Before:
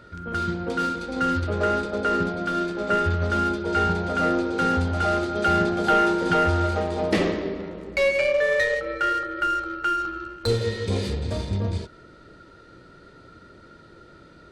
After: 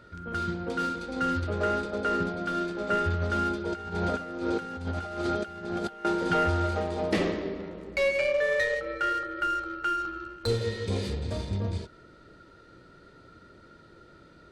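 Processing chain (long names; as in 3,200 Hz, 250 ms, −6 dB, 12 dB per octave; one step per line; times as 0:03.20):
0:03.72–0:06.05: compressor whose output falls as the input rises −27 dBFS, ratio −0.5
level −4.5 dB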